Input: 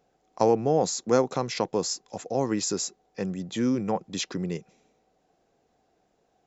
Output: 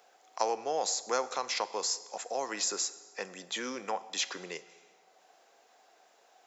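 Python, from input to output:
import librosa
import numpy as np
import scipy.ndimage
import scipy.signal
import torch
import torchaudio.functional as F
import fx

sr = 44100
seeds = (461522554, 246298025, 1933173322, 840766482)

y = scipy.signal.sosfilt(scipy.signal.butter(2, 830.0, 'highpass', fs=sr, output='sos'), x)
y = fx.rev_plate(y, sr, seeds[0], rt60_s=1.1, hf_ratio=0.9, predelay_ms=0, drr_db=14.0)
y = fx.band_squash(y, sr, depth_pct=40)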